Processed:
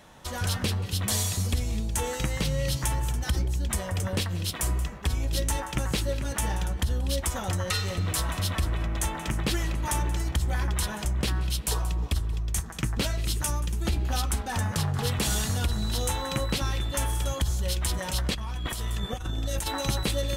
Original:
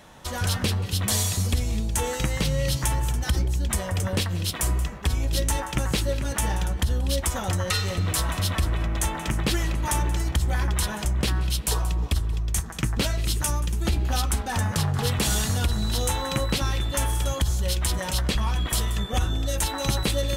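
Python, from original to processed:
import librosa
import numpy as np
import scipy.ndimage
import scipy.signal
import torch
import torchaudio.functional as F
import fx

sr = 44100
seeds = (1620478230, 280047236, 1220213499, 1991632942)

y = fx.over_compress(x, sr, threshold_db=-26.0, ratio=-0.5, at=(18.3, 19.81))
y = y * librosa.db_to_amplitude(-3.0)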